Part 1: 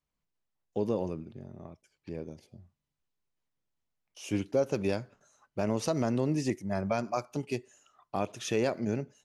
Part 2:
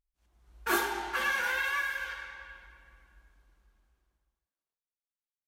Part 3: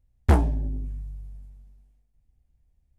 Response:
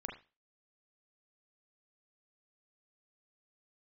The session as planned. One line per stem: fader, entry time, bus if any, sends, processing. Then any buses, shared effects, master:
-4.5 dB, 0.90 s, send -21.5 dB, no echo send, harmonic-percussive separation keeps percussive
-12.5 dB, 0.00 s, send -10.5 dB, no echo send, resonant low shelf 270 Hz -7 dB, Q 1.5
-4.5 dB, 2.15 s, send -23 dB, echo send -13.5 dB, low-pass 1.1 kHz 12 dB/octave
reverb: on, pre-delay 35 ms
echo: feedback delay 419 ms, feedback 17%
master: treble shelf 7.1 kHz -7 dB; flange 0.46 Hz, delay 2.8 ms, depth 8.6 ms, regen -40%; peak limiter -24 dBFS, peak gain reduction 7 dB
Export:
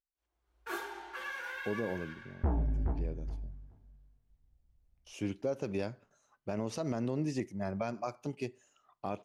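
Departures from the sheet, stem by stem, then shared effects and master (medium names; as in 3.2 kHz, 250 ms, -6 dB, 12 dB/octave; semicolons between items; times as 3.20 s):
stem 1: missing harmonic-percussive separation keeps percussive; master: missing flange 0.46 Hz, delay 2.8 ms, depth 8.6 ms, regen -40%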